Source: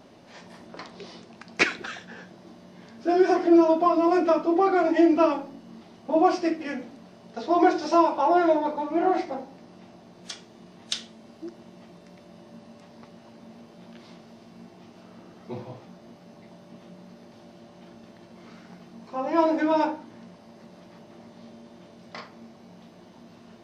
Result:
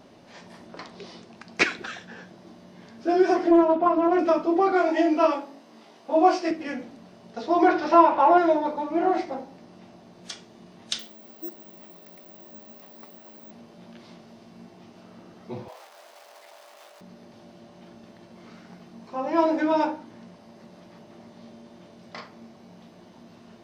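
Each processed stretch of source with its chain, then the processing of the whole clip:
0:03.51–0:04.19: low-pass filter 2,500 Hz + highs frequency-modulated by the lows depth 0.24 ms
0:04.72–0:06.51: high-pass filter 220 Hz + low-shelf EQ 330 Hz −6.5 dB + double-tracking delay 19 ms −2.5 dB
0:07.68–0:08.38: mu-law and A-law mismatch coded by mu + low-pass filter 3,400 Hz + parametric band 1,500 Hz +7 dB 1.9 octaves
0:10.99–0:13.51: high-pass filter 240 Hz + bad sample-rate conversion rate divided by 2×, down none, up zero stuff
0:15.68–0:17.01: converter with a step at zero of −44 dBFS + high-pass filter 580 Hz 24 dB per octave
whole clip: no processing

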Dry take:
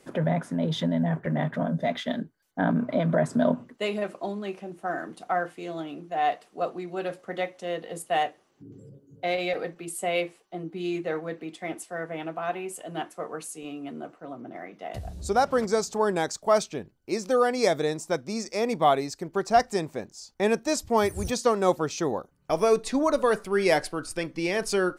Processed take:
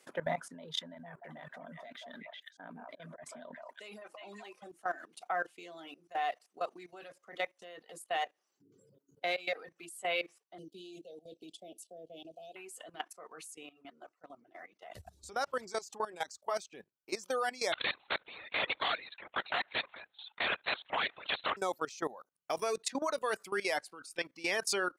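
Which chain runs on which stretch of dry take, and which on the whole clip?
0:00.94–0:04.72: echo through a band-pass that steps 182 ms, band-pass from 920 Hz, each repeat 1.4 octaves, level −3.5 dB + volume swells 241 ms + downward compressor 4 to 1, threshold −27 dBFS
0:10.58–0:12.56: elliptic band-stop filter 630–3,100 Hz + high-shelf EQ 7,600 Hz −4 dB + multiband upward and downward compressor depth 40%
0:13.66–0:16.74: parametric band 75 Hz +12.5 dB 0.76 octaves + flanger 1.5 Hz, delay 0.2 ms, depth 4 ms, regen −55%
0:17.72–0:21.57: Bessel high-pass filter 990 Hz + linear-prediction vocoder at 8 kHz whisper + every bin compressed towards the loudest bin 2 to 1
whole clip: high-pass filter 1,100 Hz 6 dB per octave; reverb reduction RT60 0.63 s; output level in coarse steps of 17 dB; level +2 dB

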